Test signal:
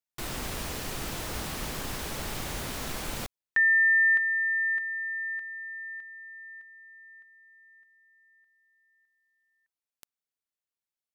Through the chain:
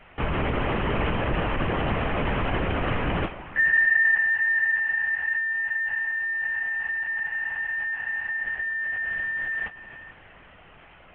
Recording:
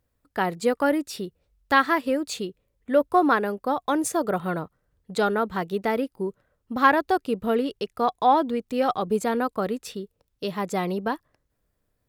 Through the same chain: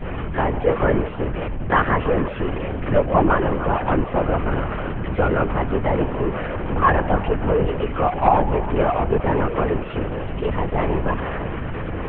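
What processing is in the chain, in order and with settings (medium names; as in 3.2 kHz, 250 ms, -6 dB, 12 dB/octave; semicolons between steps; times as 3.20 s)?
jump at every zero crossing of -20 dBFS; steep low-pass 3.1 kHz 72 dB/octave; gate -30 dBFS, range -12 dB; treble shelf 2.4 kHz -8.5 dB; repeats whose band climbs or falls 152 ms, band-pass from 650 Hz, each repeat 0.7 oct, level -11 dB; algorithmic reverb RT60 2.7 s, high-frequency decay 0.75×, pre-delay 60 ms, DRR 17.5 dB; LPC vocoder at 8 kHz whisper; trim +1 dB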